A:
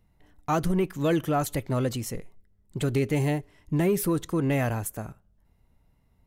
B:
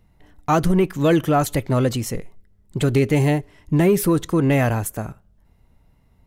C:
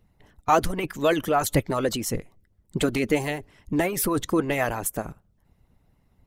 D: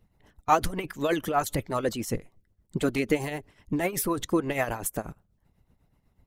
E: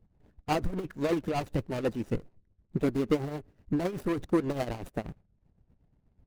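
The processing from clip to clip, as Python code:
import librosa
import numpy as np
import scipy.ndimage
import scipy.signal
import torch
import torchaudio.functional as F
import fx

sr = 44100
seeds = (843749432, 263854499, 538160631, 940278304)

y1 = fx.high_shelf(x, sr, hz=8100.0, db=-3.5)
y1 = F.gain(torch.from_numpy(y1), 7.5).numpy()
y2 = fx.hpss(y1, sr, part='harmonic', gain_db=-17)
y2 = F.gain(torch.from_numpy(y2), 1.0).numpy()
y3 = fx.tremolo_shape(y2, sr, shape='triangle', hz=8.1, depth_pct=70)
y4 = scipy.ndimage.median_filter(y3, 41, mode='constant')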